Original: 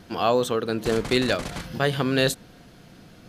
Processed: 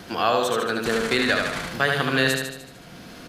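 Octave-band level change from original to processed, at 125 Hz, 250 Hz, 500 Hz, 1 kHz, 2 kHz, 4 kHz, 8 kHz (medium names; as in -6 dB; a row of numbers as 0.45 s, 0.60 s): -2.5 dB, -1.0 dB, -0.5 dB, +3.5 dB, +7.0 dB, +2.5 dB, +2.0 dB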